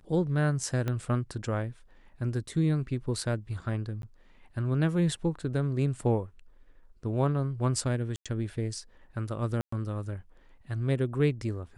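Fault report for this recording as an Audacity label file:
0.880000	0.880000	pop -18 dBFS
4.020000	4.030000	dropout 12 ms
8.160000	8.260000	dropout 96 ms
9.610000	9.720000	dropout 114 ms

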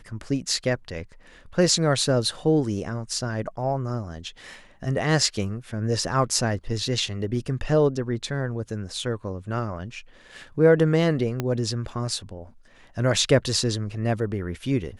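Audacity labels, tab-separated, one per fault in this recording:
11.400000	11.400000	pop -12 dBFS

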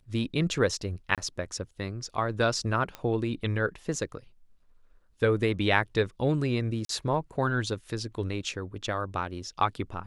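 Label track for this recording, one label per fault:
1.150000	1.180000	dropout 27 ms
2.950000	2.950000	pop -21 dBFS
6.850000	6.890000	dropout 43 ms

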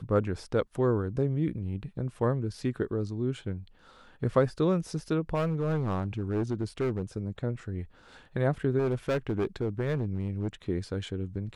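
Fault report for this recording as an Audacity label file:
5.340000	7.030000	clipped -24 dBFS
8.780000	10.480000	clipped -24 dBFS

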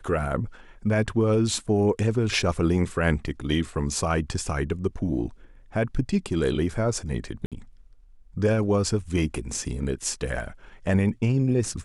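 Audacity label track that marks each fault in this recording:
7.460000	7.520000	dropout 57 ms

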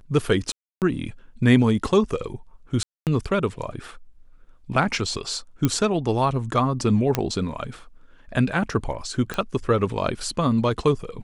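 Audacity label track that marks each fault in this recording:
0.520000	0.820000	dropout 298 ms
2.830000	3.070000	dropout 238 ms
5.650000	5.650000	pop -7 dBFS
7.150000	7.150000	pop -6 dBFS
9.340000	9.340000	pop -13 dBFS

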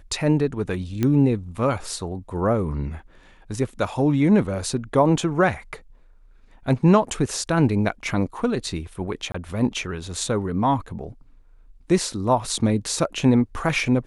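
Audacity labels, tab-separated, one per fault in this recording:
1.030000	1.030000	pop -10 dBFS
9.320000	9.340000	dropout 24 ms

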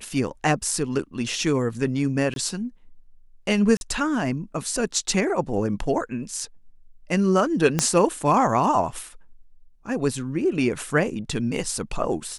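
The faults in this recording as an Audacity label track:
2.340000	2.360000	dropout 22 ms
3.770000	3.810000	dropout 41 ms
7.790000	7.790000	pop -6 dBFS

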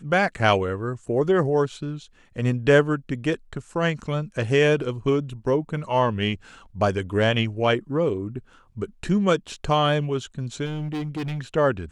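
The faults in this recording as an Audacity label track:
10.650000	11.400000	clipped -25.5 dBFS

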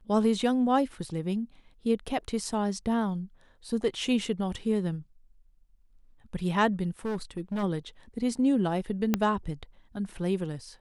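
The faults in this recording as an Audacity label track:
7.050000	7.640000	clipped -27.5 dBFS
9.140000	9.140000	pop -10 dBFS

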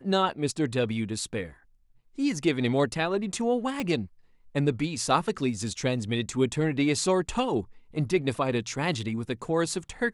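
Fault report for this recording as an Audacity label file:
3.800000	3.800000	pop -16 dBFS

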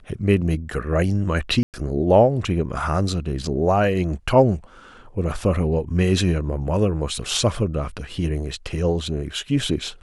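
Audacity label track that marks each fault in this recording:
1.630000	1.740000	dropout 108 ms

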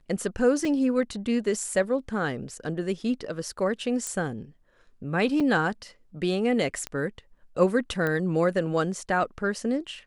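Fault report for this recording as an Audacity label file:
0.650000	0.650000	dropout 2 ms
4.070000	4.070000	pop -17 dBFS
5.400000	5.400000	dropout 4.1 ms
6.870000	6.870000	pop -16 dBFS
8.070000	8.070000	pop -16 dBFS

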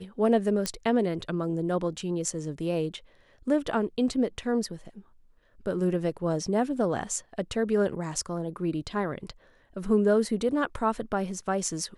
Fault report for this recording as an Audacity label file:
0.660000	0.660000	pop -12 dBFS

